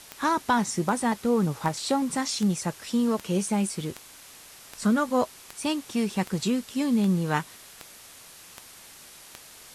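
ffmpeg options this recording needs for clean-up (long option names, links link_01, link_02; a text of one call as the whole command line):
ffmpeg -i in.wav -af "adeclick=threshold=4,afwtdn=0.005" out.wav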